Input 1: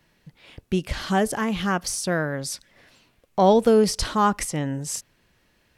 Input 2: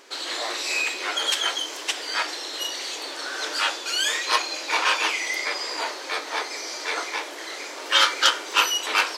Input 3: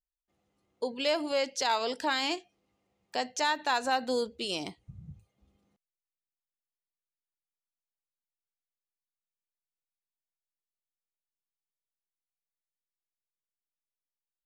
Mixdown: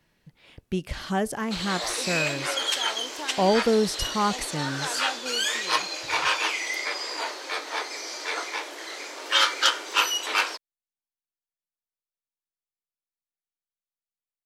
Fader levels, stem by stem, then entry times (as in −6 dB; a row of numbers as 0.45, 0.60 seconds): −4.5, −2.5, −7.0 decibels; 0.00, 1.40, 1.15 seconds